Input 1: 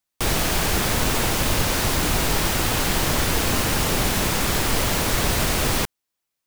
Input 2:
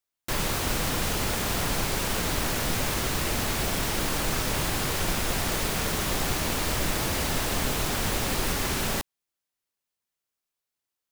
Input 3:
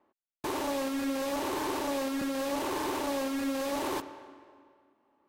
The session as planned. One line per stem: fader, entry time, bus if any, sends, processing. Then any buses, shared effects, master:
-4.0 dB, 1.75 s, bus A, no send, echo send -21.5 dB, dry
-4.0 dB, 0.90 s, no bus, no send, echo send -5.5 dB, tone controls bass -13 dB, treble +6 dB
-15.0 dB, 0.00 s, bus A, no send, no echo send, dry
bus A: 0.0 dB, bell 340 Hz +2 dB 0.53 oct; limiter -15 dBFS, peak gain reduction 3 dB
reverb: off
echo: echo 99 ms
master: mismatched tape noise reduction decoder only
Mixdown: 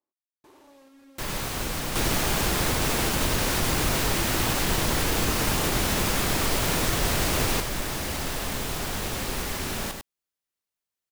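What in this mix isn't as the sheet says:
stem 2: missing tone controls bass -13 dB, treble +6 dB; stem 3 -15.0 dB -> -22.5 dB; master: missing mismatched tape noise reduction decoder only

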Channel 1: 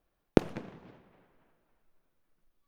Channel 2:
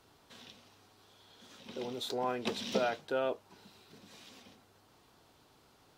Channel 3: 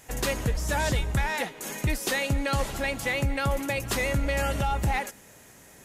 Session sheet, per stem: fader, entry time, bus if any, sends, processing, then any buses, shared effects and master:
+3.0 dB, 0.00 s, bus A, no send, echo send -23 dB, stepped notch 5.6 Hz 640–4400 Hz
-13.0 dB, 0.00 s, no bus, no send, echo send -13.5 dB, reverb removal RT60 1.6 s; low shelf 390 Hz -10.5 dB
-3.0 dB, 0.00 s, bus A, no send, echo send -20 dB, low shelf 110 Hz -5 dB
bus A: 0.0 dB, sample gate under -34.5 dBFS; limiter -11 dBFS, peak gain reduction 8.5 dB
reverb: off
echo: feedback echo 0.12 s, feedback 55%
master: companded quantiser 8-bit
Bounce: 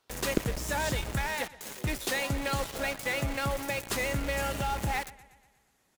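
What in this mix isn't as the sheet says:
stem 1 +3.0 dB -> -5.5 dB; stem 2 -13.0 dB -> -6.5 dB; master: missing companded quantiser 8-bit

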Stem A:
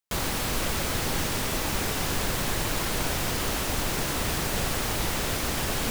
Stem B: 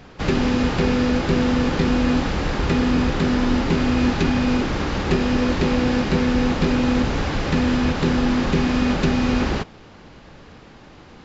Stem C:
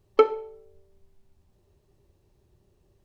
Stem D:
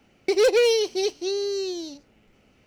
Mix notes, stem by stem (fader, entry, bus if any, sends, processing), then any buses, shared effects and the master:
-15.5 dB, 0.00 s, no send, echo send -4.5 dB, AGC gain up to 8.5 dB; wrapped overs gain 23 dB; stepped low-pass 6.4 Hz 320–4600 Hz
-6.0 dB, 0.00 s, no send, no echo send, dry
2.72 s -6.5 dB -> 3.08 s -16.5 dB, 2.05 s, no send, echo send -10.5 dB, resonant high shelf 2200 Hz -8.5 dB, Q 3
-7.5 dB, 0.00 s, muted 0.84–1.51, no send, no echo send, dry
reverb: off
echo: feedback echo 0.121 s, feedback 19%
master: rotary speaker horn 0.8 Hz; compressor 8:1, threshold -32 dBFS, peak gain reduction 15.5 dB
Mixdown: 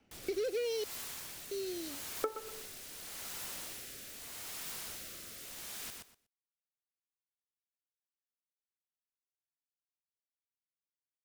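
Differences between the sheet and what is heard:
stem A: missing stepped low-pass 6.4 Hz 320–4600 Hz; stem B: muted

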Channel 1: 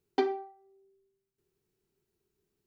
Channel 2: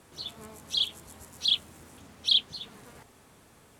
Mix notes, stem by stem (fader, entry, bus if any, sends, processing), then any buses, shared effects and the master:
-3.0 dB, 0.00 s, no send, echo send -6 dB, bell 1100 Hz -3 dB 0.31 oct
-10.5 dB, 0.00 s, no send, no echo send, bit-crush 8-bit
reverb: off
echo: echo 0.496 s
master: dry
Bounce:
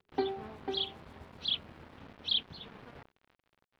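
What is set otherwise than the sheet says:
stem 2 -10.5 dB -> +1.0 dB; master: extra air absorption 370 m

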